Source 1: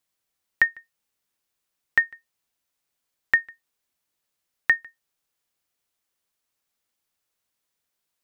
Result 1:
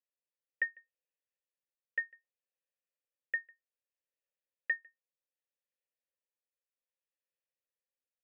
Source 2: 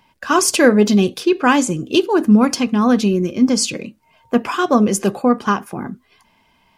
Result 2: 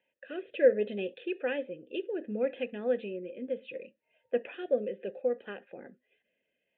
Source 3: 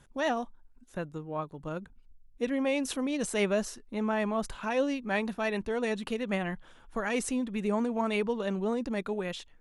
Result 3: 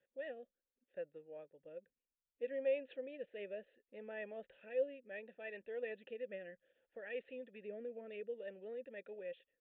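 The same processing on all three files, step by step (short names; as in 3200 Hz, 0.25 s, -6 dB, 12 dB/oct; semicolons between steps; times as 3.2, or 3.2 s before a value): vowel filter e; rotary speaker horn 0.65 Hz; downsampling 8000 Hz; gain -3 dB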